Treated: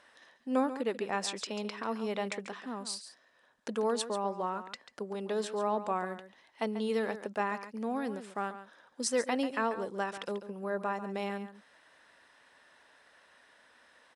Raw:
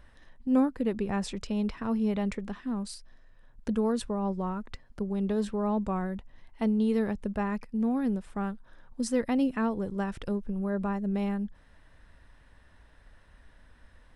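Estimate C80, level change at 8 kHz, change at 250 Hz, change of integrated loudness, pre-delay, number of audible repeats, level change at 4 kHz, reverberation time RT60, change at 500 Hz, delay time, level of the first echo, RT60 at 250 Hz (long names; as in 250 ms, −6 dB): no reverb audible, +5.0 dB, −9.5 dB, −4.0 dB, no reverb audible, 1, +5.0 dB, no reverb audible, −0.5 dB, 140 ms, −12.0 dB, no reverb audible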